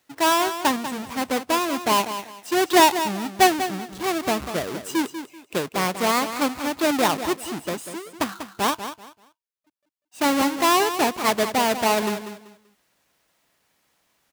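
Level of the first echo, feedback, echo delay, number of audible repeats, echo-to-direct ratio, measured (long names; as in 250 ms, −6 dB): −10.5 dB, 25%, 193 ms, 3, −10.0 dB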